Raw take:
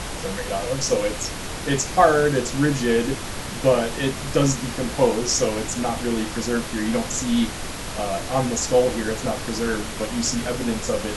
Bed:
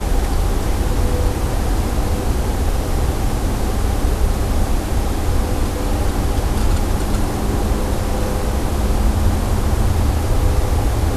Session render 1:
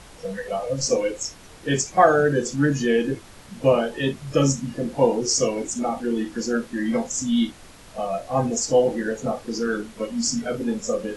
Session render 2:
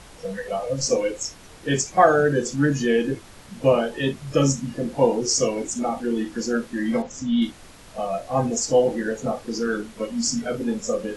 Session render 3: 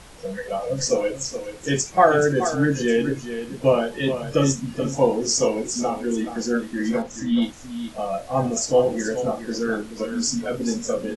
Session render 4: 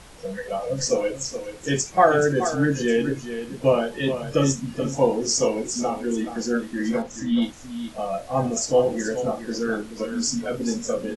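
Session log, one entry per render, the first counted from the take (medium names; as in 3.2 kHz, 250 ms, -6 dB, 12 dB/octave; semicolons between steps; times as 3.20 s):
noise print and reduce 15 dB
7.02–7.42 s: distance through air 150 m
delay 427 ms -10 dB
trim -1 dB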